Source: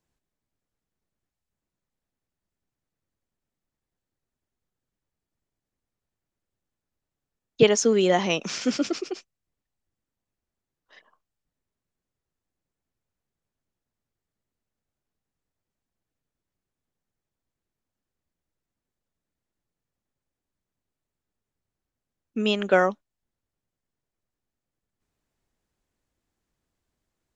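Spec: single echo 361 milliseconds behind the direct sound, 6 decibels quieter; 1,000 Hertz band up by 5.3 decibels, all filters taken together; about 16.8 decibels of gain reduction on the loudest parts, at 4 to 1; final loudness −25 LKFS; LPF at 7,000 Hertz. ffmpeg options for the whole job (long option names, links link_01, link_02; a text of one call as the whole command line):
ffmpeg -i in.wav -af "lowpass=7000,equalizer=frequency=1000:width_type=o:gain=8,acompressor=threshold=-32dB:ratio=4,aecho=1:1:361:0.501,volume=10dB" out.wav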